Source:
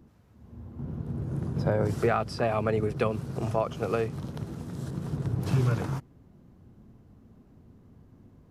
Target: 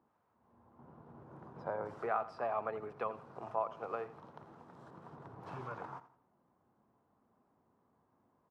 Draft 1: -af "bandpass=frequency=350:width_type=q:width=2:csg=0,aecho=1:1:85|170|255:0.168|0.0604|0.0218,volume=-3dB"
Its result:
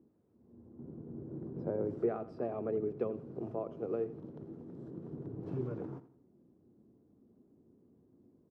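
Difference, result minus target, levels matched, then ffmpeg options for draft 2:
250 Hz band +11.5 dB
-af "bandpass=frequency=960:width_type=q:width=2:csg=0,aecho=1:1:85|170|255:0.168|0.0604|0.0218,volume=-3dB"

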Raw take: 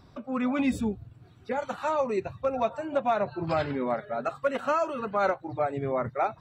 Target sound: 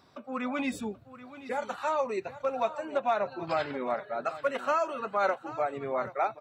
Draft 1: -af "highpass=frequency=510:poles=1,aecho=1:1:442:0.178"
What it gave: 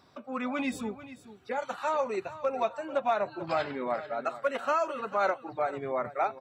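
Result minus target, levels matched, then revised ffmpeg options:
echo 340 ms early
-af "highpass=frequency=510:poles=1,aecho=1:1:782:0.178"

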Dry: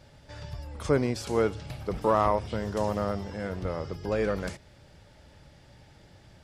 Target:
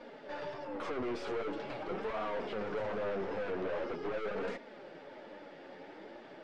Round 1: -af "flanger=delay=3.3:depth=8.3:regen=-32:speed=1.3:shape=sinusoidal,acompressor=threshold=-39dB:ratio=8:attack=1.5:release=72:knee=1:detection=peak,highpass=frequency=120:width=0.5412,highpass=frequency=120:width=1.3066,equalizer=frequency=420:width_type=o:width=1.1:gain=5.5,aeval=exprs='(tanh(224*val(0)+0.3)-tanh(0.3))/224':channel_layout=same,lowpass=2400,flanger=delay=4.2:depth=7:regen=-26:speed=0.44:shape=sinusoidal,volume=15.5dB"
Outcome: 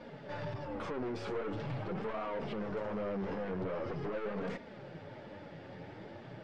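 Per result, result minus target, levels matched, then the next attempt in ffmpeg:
125 Hz band +11.5 dB; downward compressor: peak gain reduction +6.5 dB
-af "flanger=delay=3.3:depth=8.3:regen=-32:speed=1.3:shape=sinusoidal,acompressor=threshold=-39dB:ratio=8:attack=1.5:release=72:knee=1:detection=peak,highpass=frequency=250:width=0.5412,highpass=frequency=250:width=1.3066,equalizer=frequency=420:width_type=o:width=1.1:gain=5.5,aeval=exprs='(tanh(224*val(0)+0.3)-tanh(0.3))/224':channel_layout=same,lowpass=2400,flanger=delay=4.2:depth=7:regen=-26:speed=0.44:shape=sinusoidal,volume=15.5dB"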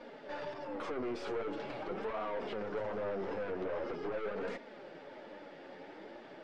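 downward compressor: peak gain reduction +6.5 dB
-af "flanger=delay=3.3:depth=8.3:regen=-32:speed=1.3:shape=sinusoidal,acompressor=threshold=-31.5dB:ratio=8:attack=1.5:release=72:knee=1:detection=peak,highpass=frequency=250:width=0.5412,highpass=frequency=250:width=1.3066,equalizer=frequency=420:width_type=o:width=1.1:gain=5.5,aeval=exprs='(tanh(224*val(0)+0.3)-tanh(0.3))/224':channel_layout=same,lowpass=2400,flanger=delay=4.2:depth=7:regen=-26:speed=0.44:shape=sinusoidal,volume=15.5dB"

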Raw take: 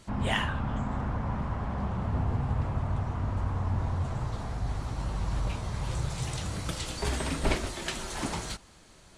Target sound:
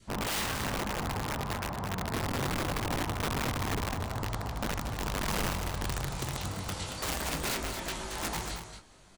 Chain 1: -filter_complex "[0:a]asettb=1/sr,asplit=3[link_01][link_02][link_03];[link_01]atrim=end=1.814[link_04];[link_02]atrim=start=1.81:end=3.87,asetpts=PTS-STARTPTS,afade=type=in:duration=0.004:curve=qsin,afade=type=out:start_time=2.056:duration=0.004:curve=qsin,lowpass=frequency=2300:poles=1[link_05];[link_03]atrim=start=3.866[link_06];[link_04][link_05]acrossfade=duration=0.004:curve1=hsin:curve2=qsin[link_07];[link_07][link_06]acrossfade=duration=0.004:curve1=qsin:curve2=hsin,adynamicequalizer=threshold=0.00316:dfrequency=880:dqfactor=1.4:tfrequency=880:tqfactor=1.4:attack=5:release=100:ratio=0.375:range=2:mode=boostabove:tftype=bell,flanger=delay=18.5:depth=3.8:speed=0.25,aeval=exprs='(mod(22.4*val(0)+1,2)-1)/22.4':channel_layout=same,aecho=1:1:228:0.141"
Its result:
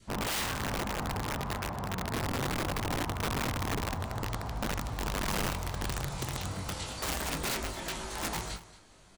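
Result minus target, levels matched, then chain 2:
echo-to-direct −9 dB
-filter_complex "[0:a]asettb=1/sr,asplit=3[link_01][link_02][link_03];[link_01]atrim=end=1.814[link_04];[link_02]atrim=start=1.81:end=3.87,asetpts=PTS-STARTPTS,afade=type=in:duration=0.004:curve=qsin,afade=type=out:start_time=2.056:duration=0.004:curve=qsin,lowpass=frequency=2300:poles=1[link_05];[link_03]atrim=start=3.866[link_06];[link_04][link_05]acrossfade=duration=0.004:curve1=hsin:curve2=qsin[link_07];[link_07][link_06]acrossfade=duration=0.004:curve1=qsin:curve2=hsin,adynamicequalizer=threshold=0.00316:dfrequency=880:dqfactor=1.4:tfrequency=880:tqfactor=1.4:attack=5:release=100:ratio=0.375:range=2:mode=boostabove:tftype=bell,flanger=delay=18.5:depth=3.8:speed=0.25,aeval=exprs='(mod(22.4*val(0)+1,2)-1)/22.4':channel_layout=same,aecho=1:1:228:0.398"

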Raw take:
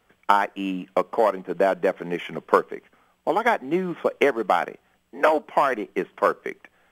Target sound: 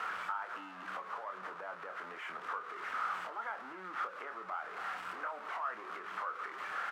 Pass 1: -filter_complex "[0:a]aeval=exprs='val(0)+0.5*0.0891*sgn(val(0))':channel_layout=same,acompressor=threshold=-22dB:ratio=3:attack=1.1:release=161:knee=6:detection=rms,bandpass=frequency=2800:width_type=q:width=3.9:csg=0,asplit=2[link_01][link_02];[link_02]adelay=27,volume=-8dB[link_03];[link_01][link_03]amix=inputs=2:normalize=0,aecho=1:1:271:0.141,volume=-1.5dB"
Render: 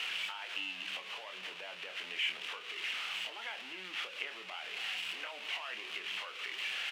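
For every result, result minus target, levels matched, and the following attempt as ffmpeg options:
1,000 Hz band −12.5 dB; downward compressor: peak gain reduction −4.5 dB
-filter_complex "[0:a]aeval=exprs='val(0)+0.5*0.0891*sgn(val(0))':channel_layout=same,acompressor=threshold=-22dB:ratio=3:attack=1.1:release=161:knee=6:detection=rms,bandpass=frequency=1300:width_type=q:width=3.9:csg=0,asplit=2[link_01][link_02];[link_02]adelay=27,volume=-8dB[link_03];[link_01][link_03]amix=inputs=2:normalize=0,aecho=1:1:271:0.141,volume=-1.5dB"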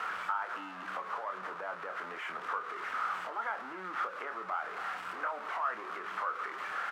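downward compressor: peak gain reduction −4.5 dB
-filter_complex "[0:a]aeval=exprs='val(0)+0.5*0.0891*sgn(val(0))':channel_layout=same,acompressor=threshold=-29dB:ratio=3:attack=1.1:release=161:knee=6:detection=rms,bandpass=frequency=1300:width_type=q:width=3.9:csg=0,asplit=2[link_01][link_02];[link_02]adelay=27,volume=-8dB[link_03];[link_01][link_03]amix=inputs=2:normalize=0,aecho=1:1:271:0.141,volume=-1.5dB"

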